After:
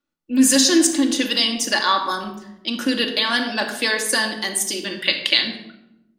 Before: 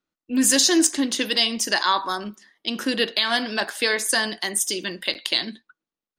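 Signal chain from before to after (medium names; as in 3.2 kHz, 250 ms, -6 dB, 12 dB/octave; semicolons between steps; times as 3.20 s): 4.90–5.48 s: FFT filter 840 Hz 0 dB, 2.3 kHz +8 dB, 9.3 kHz -4 dB; simulated room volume 3100 m³, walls furnished, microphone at 2.4 m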